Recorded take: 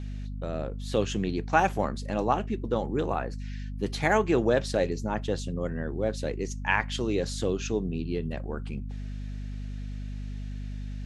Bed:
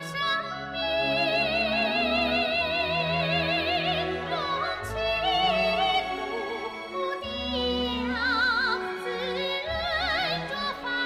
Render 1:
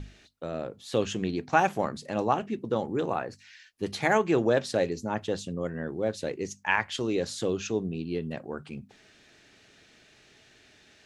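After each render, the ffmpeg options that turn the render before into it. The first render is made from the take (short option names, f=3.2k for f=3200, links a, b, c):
-af "bandreject=f=50:t=h:w=6,bandreject=f=100:t=h:w=6,bandreject=f=150:t=h:w=6,bandreject=f=200:t=h:w=6,bandreject=f=250:t=h:w=6"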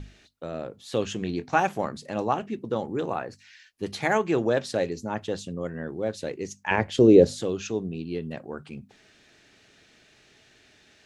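-filter_complex "[0:a]asettb=1/sr,asplit=3[a][b][c];[a]atrim=end=1.194[d];[b]atrim=start=1.19:end=1.59,asetpts=PTS-STARTPTS,afade=t=in:d=0.004:c=qsin,afade=t=out:st=0.396:d=0.004:c=qsin,asplit=2[e][f];[f]adelay=23,volume=-11dB[g];[e][g]amix=inputs=2:normalize=0,atrim=end_sample=17640[h];[c]atrim=start=1.586[i];[d][h]acrossfade=d=0.004:c1=hsin:c2=qsin[j];[j][i]acrossfade=d=0.004:c1=qsin:c2=hsin,asettb=1/sr,asplit=3[k][l][m];[k]atrim=end=6.714[n];[l]atrim=start=6.71:end=7.42,asetpts=PTS-STARTPTS,afade=t=in:d=0.004:c=qsin,afade=t=out:st=0.706:d=0.004:c=qsin,lowshelf=f=750:t=q:w=1.5:g=12[o];[m]atrim=start=7.416[p];[n][o]acrossfade=d=0.004:c1=hsin:c2=qsin[q];[q][p]acrossfade=d=0.004:c1=qsin:c2=hsin"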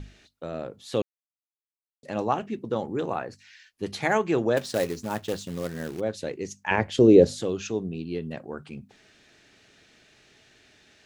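-filter_complex "[0:a]asplit=3[a][b][c];[a]afade=t=out:st=4.56:d=0.02[d];[b]acrusher=bits=3:mode=log:mix=0:aa=0.000001,afade=t=in:st=4.56:d=0.02,afade=t=out:st=5.99:d=0.02[e];[c]afade=t=in:st=5.99:d=0.02[f];[d][e][f]amix=inputs=3:normalize=0,asplit=3[g][h][i];[g]atrim=end=1.02,asetpts=PTS-STARTPTS,afade=t=out:st=1.016:d=0.004:c=hsin[j];[h]atrim=start=1.02:end=2.03,asetpts=PTS-STARTPTS,volume=0[k];[i]atrim=start=2.03,asetpts=PTS-STARTPTS,afade=t=in:d=0.004:c=hsin[l];[j][k][l]concat=n=3:v=0:a=1"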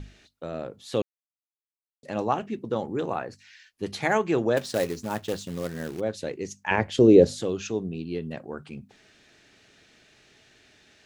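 -af anull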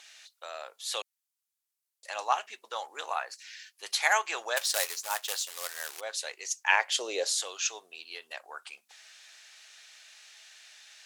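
-af "highpass=f=770:w=0.5412,highpass=f=770:w=1.3066,equalizer=f=12k:t=o:w=2.6:g=12"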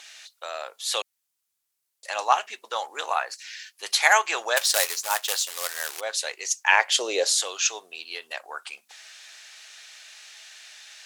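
-af "volume=7dB,alimiter=limit=-3dB:level=0:latency=1"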